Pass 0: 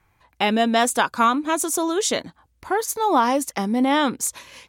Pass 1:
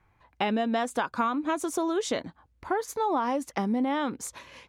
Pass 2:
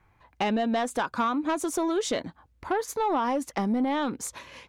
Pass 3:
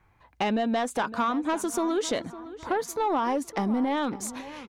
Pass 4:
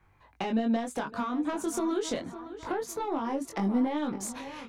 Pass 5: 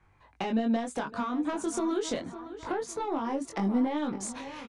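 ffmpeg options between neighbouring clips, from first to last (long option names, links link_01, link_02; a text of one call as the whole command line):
ffmpeg -i in.wav -af "lowpass=frequency=2100:poles=1,acompressor=threshold=-22dB:ratio=6,volume=-1.5dB" out.wav
ffmpeg -i in.wav -af "asoftclip=type=tanh:threshold=-20.5dB,volume=2.5dB" out.wav
ffmpeg -i in.wav -filter_complex "[0:a]asplit=2[link_01][link_02];[link_02]adelay=557,lowpass=frequency=3000:poles=1,volume=-15dB,asplit=2[link_03][link_04];[link_04]adelay=557,lowpass=frequency=3000:poles=1,volume=0.42,asplit=2[link_05][link_06];[link_06]adelay=557,lowpass=frequency=3000:poles=1,volume=0.42,asplit=2[link_07][link_08];[link_08]adelay=557,lowpass=frequency=3000:poles=1,volume=0.42[link_09];[link_01][link_03][link_05][link_07][link_09]amix=inputs=5:normalize=0" out.wav
ffmpeg -i in.wav -filter_complex "[0:a]flanger=delay=20:depth=2.1:speed=0.76,acrossover=split=360[link_01][link_02];[link_02]acompressor=threshold=-34dB:ratio=6[link_03];[link_01][link_03]amix=inputs=2:normalize=0,volume=2dB" out.wav
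ffmpeg -i in.wav -af "aresample=22050,aresample=44100" out.wav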